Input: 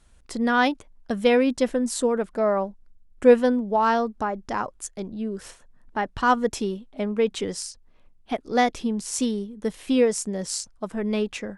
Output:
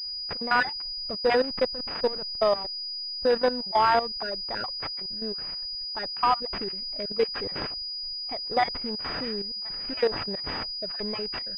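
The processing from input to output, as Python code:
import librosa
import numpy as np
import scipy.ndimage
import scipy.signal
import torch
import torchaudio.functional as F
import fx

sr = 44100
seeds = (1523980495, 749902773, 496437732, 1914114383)

y = fx.spec_dropout(x, sr, seeds[0], share_pct=25)
y = fx.peak_eq(y, sr, hz=240.0, db=-13.5, octaves=1.6)
y = fx.level_steps(y, sr, step_db=13)
y = fx.backlash(y, sr, play_db=-34.0, at=(1.16, 3.25))
y = np.repeat(y[::8], 8)[:len(y)]
y = fx.pwm(y, sr, carrier_hz=4900.0)
y = F.gain(torch.from_numpy(y), 6.5).numpy()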